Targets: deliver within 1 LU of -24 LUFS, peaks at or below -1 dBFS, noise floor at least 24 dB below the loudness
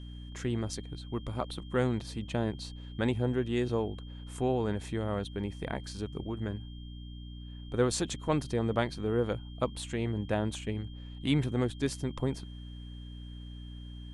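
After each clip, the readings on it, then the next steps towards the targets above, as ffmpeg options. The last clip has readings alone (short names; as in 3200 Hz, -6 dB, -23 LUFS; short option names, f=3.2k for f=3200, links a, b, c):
hum 60 Hz; harmonics up to 300 Hz; hum level -42 dBFS; steady tone 3200 Hz; tone level -55 dBFS; loudness -33.5 LUFS; peak -13.5 dBFS; loudness target -24.0 LUFS
-> -af "bandreject=f=60:t=h:w=4,bandreject=f=120:t=h:w=4,bandreject=f=180:t=h:w=4,bandreject=f=240:t=h:w=4,bandreject=f=300:t=h:w=4"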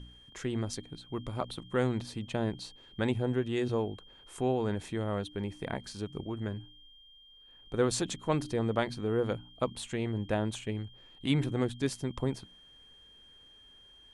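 hum none; steady tone 3200 Hz; tone level -55 dBFS
-> -af "bandreject=f=3.2k:w=30"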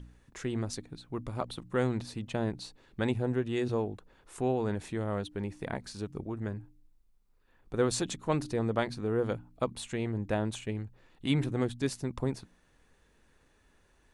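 steady tone none; loudness -33.5 LUFS; peak -14.5 dBFS; loudness target -24.0 LUFS
-> -af "volume=9.5dB"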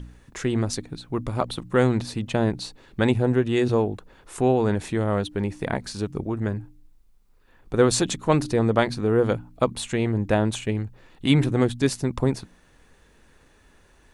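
loudness -24.0 LUFS; peak -5.0 dBFS; noise floor -57 dBFS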